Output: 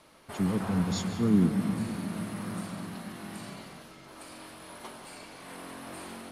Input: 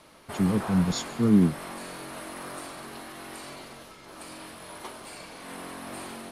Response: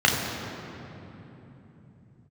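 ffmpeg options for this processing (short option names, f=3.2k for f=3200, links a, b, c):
-filter_complex "[0:a]asplit=2[a][b];[1:a]atrim=start_sample=2205,adelay=143[c];[b][c]afir=irnorm=-1:irlink=0,volume=-27.5dB[d];[a][d]amix=inputs=2:normalize=0,volume=-4dB"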